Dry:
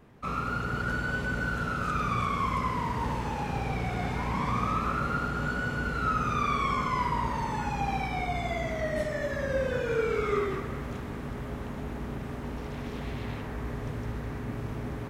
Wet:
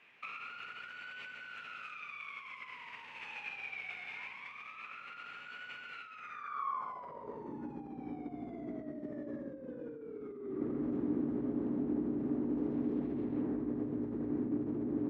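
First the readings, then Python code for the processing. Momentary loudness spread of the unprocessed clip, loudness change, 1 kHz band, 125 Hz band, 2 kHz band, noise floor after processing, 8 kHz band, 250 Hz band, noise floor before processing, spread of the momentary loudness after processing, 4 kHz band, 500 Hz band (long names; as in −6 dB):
9 LU, −9.0 dB, −15.5 dB, −16.5 dB, −11.5 dB, −50 dBFS, below −20 dB, −1.0 dB, −37 dBFS, 12 LU, −11.0 dB, −10.5 dB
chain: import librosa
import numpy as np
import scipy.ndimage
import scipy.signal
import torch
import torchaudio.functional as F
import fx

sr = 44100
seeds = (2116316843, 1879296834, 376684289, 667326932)

y = scipy.signal.sosfilt(scipy.signal.butter(2, 47.0, 'highpass', fs=sr, output='sos'), x)
y = fx.peak_eq(y, sr, hz=83.0, db=-7.0, octaves=0.42)
y = fx.over_compress(y, sr, threshold_db=-37.0, ratio=-1.0)
y = fx.filter_sweep_bandpass(y, sr, from_hz=2500.0, to_hz=300.0, start_s=6.15, end_s=7.56, q=5.2)
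y = y * 10.0 ** (8.0 / 20.0)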